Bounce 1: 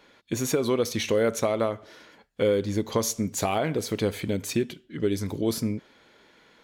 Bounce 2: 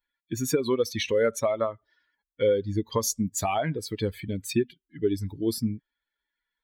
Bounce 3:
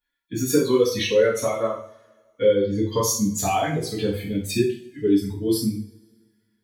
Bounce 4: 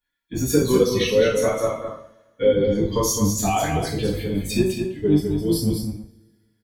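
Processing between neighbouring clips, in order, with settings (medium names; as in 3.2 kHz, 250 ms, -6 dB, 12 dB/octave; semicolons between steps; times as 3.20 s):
expander on every frequency bin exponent 2; trim +3.5 dB
two-slope reverb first 0.44 s, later 1.8 s, from -27 dB, DRR -8 dB; trim -4 dB
octave divider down 1 oct, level -3 dB; delay 208 ms -6.5 dB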